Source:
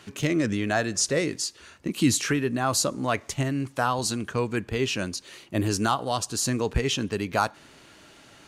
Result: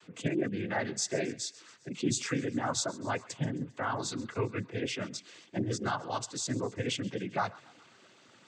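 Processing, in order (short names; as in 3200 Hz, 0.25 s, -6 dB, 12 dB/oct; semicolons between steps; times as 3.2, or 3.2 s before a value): spectral gate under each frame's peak -25 dB strong; thinning echo 0.133 s, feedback 62%, high-pass 780 Hz, level -19 dB; noise vocoder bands 16; gain -7 dB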